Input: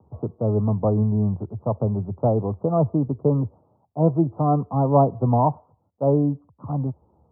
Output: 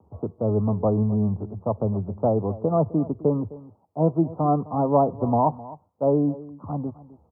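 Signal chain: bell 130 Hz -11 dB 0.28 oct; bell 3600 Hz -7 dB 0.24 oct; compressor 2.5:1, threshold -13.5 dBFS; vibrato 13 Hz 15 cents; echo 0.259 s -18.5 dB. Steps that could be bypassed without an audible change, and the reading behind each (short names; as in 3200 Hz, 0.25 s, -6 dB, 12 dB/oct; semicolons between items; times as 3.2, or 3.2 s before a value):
bell 3600 Hz: input band ends at 1200 Hz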